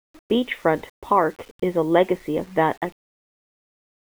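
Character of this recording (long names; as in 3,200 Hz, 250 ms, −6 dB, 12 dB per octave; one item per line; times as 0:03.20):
a quantiser's noise floor 8 bits, dither none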